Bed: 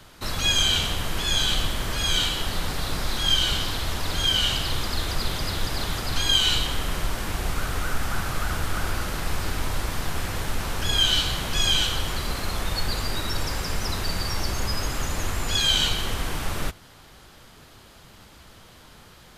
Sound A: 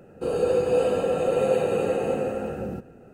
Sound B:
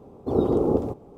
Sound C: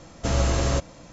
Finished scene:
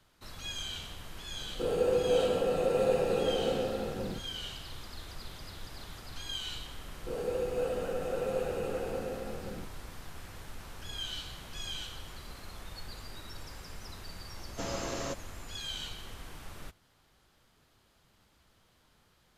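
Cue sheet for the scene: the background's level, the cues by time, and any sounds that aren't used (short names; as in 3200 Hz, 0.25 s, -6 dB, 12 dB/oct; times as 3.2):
bed -18 dB
1.38 add A -5.5 dB
6.85 add A -11 dB
14.34 add C -9.5 dB + HPF 200 Hz
not used: B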